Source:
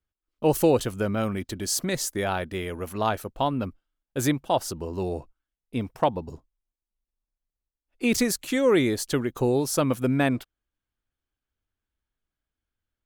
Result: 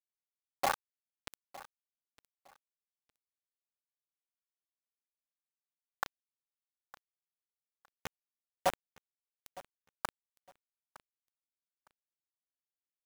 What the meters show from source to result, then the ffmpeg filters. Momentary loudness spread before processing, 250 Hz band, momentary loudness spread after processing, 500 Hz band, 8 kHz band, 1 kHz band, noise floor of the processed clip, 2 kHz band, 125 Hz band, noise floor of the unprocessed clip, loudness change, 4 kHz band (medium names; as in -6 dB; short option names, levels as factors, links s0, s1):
11 LU, -33.5 dB, 20 LU, -21.5 dB, -20.0 dB, -11.0 dB, under -85 dBFS, -13.5 dB, -32.0 dB, under -85 dBFS, -13.0 dB, -16.0 dB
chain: -filter_complex "[0:a]aphaser=in_gain=1:out_gain=1:delay=1.6:decay=0.74:speed=1.5:type=triangular,aemphasis=mode=reproduction:type=75kf,aeval=exprs='1.12*(cos(1*acos(clip(val(0)/1.12,-1,1)))-cos(1*PI/2))+0.126*(cos(2*acos(clip(val(0)/1.12,-1,1)))-cos(2*PI/2))+0.0141*(cos(6*acos(clip(val(0)/1.12,-1,1)))-cos(6*PI/2))+0.141*(cos(7*acos(clip(val(0)/1.12,-1,1)))-cos(7*PI/2))+0.0355*(cos(8*acos(clip(val(0)/1.12,-1,1)))-cos(8*PI/2))':c=same,aresample=8000,acrusher=samples=33:mix=1:aa=0.000001:lfo=1:lforange=19.8:lforate=0.97,aresample=44100,flanger=delay=0.5:depth=8.8:regen=82:speed=0.4:shape=sinusoidal,afftfilt=real='re*between(b*sr/4096,540,1800)':imag='im*between(b*sr/4096,540,1800)':win_size=4096:overlap=0.75,asoftclip=type=hard:threshold=0.168,acrossover=split=780[s0][s1];[s0]aeval=exprs='val(0)*(1-1/2+1/2*cos(2*PI*5.5*n/s))':c=same[s2];[s1]aeval=exprs='val(0)*(1-1/2-1/2*cos(2*PI*5.5*n/s))':c=same[s3];[s2][s3]amix=inputs=2:normalize=0,acrusher=bits=5:mix=0:aa=0.000001,aecho=1:1:910|1820:0.112|0.0258,volume=2"